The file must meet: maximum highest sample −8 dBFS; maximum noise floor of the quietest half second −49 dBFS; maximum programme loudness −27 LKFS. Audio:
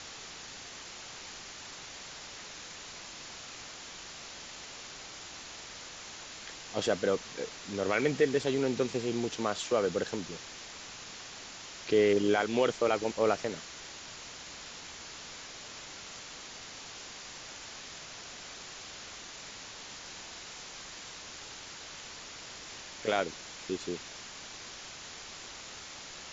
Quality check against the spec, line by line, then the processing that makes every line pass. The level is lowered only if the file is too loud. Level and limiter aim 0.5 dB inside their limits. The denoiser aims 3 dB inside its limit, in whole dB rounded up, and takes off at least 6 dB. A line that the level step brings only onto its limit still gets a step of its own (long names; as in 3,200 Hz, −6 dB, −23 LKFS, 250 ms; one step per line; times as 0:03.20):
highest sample −14.0 dBFS: in spec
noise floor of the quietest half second −46 dBFS: out of spec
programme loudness −36.0 LKFS: in spec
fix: broadband denoise 6 dB, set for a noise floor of −46 dBFS